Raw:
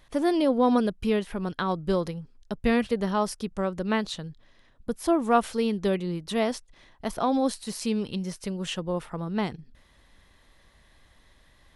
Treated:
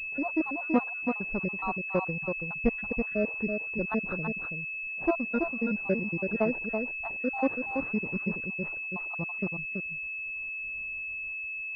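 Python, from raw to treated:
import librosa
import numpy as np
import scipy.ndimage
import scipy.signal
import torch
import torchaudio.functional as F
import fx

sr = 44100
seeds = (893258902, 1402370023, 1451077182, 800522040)

y = fx.spec_dropout(x, sr, seeds[0], share_pct=69)
y = fx.fixed_phaser(y, sr, hz=590.0, stages=8, at=(5.15, 5.85))
y = y + 10.0 ** (-5.0 / 20.0) * np.pad(y, (int(330 * sr / 1000.0), 0))[:len(y)]
y = fx.pwm(y, sr, carrier_hz=2600.0)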